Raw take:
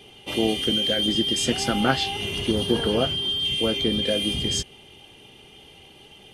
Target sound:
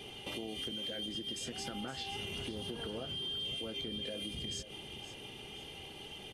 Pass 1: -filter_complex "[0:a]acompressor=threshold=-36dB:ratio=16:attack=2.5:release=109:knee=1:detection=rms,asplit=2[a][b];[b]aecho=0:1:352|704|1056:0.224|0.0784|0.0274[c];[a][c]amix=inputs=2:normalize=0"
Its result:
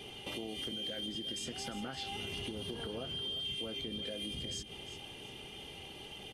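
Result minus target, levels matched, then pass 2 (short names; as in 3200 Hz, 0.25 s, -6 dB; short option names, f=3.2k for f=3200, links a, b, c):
echo 0.164 s early
-filter_complex "[0:a]acompressor=threshold=-36dB:ratio=16:attack=2.5:release=109:knee=1:detection=rms,asplit=2[a][b];[b]aecho=0:1:516|1032|1548:0.224|0.0784|0.0274[c];[a][c]amix=inputs=2:normalize=0"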